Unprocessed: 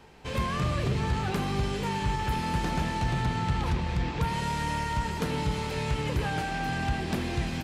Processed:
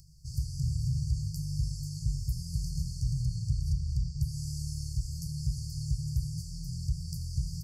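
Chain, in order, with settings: upward compressor, threshold -45 dBFS; FFT band-reject 170–4400 Hz; dynamic bell 360 Hz, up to -7 dB, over -51 dBFS, Q 1.1

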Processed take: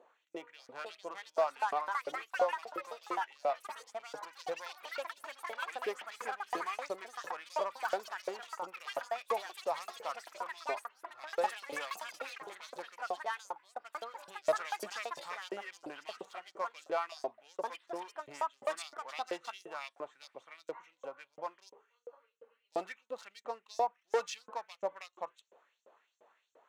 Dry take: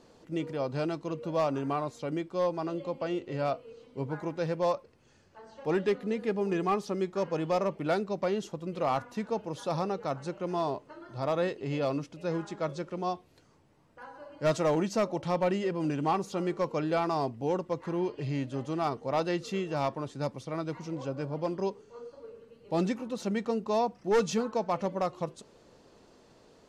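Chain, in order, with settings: local Wiener filter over 9 samples; in parallel at -12 dB: hard clipper -32 dBFS, distortion -7 dB; on the sum: LFO high-pass saw up 2.9 Hz 490–7700 Hz; ever faster or slower copies 587 ms, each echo +5 st, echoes 3; trim -7.5 dB

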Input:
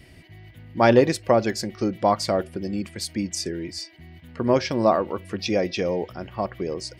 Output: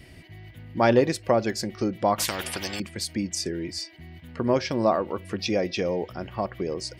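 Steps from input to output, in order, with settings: in parallel at -1 dB: compression, threshold -29 dBFS, peak gain reduction 17 dB; 2.18–2.80 s: on the sum: spectrum-flattening compressor 4:1; trim -4.5 dB

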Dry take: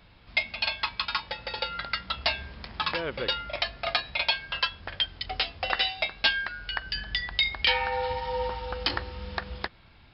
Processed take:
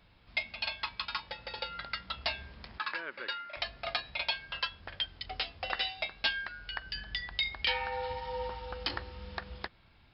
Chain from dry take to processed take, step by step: 2.78–3.57 s: cabinet simulation 400–4700 Hz, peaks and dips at 490 Hz -8 dB, 740 Hz -8 dB, 1.6 kHz +7 dB, 3.3 kHz -8 dB; trim -7 dB

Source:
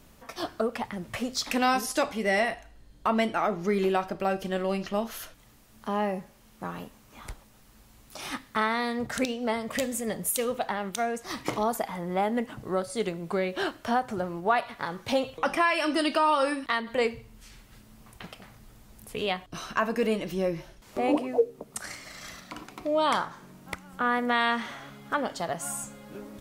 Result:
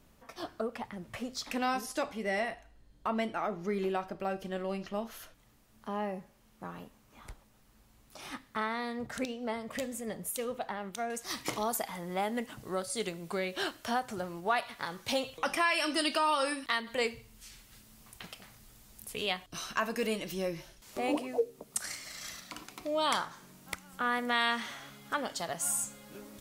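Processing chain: treble shelf 2.5 kHz -2 dB, from 11.10 s +11 dB; trim -7 dB

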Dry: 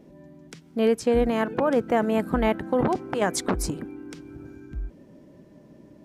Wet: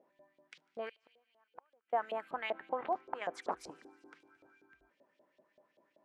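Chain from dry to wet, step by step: 0.89–1.93 s: inverted gate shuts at -20 dBFS, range -36 dB; 2.53–4.22 s: tilt shelf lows +5 dB, about 1.3 kHz; feedback echo behind a high-pass 74 ms, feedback 77%, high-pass 2.8 kHz, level -19 dB; LFO band-pass saw up 5.2 Hz 540–3600 Hz; bass shelf 390 Hz -11.5 dB; trim -3 dB

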